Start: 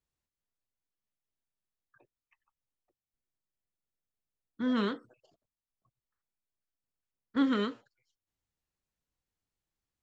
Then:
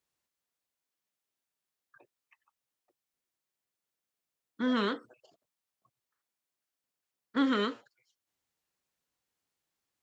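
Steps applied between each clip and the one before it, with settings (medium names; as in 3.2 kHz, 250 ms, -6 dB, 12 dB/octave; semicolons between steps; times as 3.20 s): high-pass 350 Hz 6 dB/octave; in parallel at -0.5 dB: peak limiter -28.5 dBFS, peak gain reduction 8.5 dB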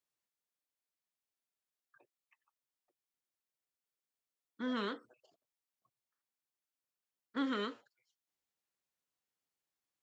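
bass shelf 140 Hz -5 dB; trim -7 dB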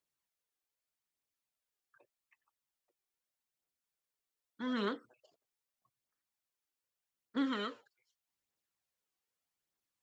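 phaser 0.82 Hz, delay 2.7 ms, feedback 40%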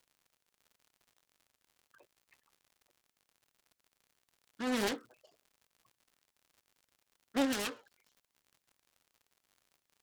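self-modulated delay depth 0.93 ms; crackle 100 per s -57 dBFS; trim +4 dB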